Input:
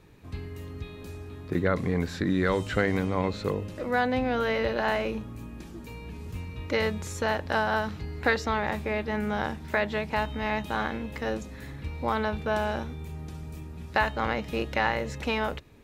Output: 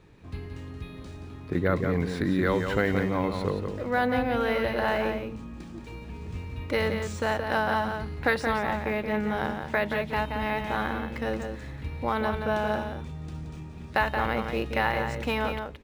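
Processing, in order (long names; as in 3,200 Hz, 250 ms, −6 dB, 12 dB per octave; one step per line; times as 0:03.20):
slap from a distant wall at 30 metres, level −6 dB
linearly interpolated sample-rate reduction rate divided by 3×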